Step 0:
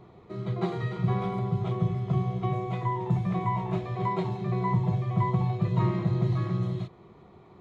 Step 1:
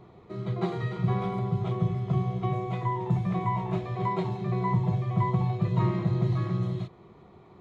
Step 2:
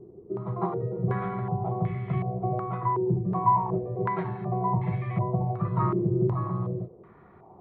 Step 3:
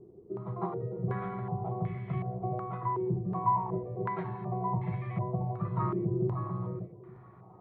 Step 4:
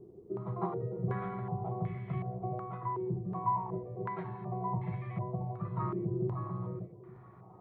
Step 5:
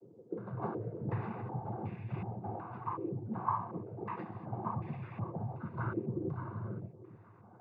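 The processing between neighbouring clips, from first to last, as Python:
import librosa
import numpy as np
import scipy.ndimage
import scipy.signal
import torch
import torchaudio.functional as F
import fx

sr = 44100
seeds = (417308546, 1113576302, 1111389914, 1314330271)

y1 = x
y2 = fx.filter_held_lowpass(y1, sr, hz=2.7, low_hz=390.0, high_hz=2100.0)
y2 = y2 * 10.0 ** (-2.0 / 20.0)
y3 = fx.echo_feedback(y2, sr, ms=867, feedback_pct=28, wet_db=-21)
y3 = y3 * 10.0 ** (-5.5 / 20.0)
y4 = fx.rider(y3, sr, range_db=5, speed_s=2.0)
y4 = y4 * 10.0 ** (-3.5 / 20.0)
y5 = fx.noise_vocoder(y4, sr, seeds[0], bands=16)
y5 = y5 * 10.0 ** (-2.5 / 20.0)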